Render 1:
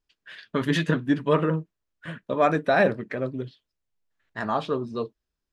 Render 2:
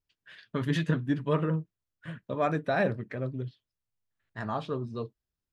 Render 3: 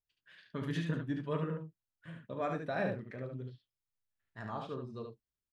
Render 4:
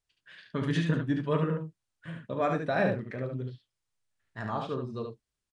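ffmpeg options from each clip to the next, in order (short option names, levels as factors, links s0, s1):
-af "equalizer=f=110:t=o:w=1.1:g=10.5,volume=0.422"
-af "aecho=1:1:36|72:0.266|0.562,volume=0.355"
-af "aresample=22050,aresample=44100,volume=2.37"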